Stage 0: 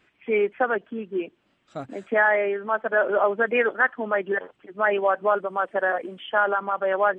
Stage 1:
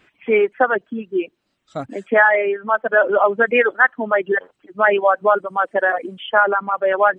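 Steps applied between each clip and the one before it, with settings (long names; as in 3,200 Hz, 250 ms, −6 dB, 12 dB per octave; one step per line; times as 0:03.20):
reverb reduction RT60 2 s
level +7 dB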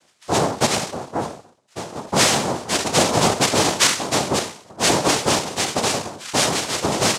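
peak hold with a decay on every bin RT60 0.52 s
far-end echo of a speakerphone 250 ms, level −28 dB
cochlear-implant simulation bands 2
level −4.5 dB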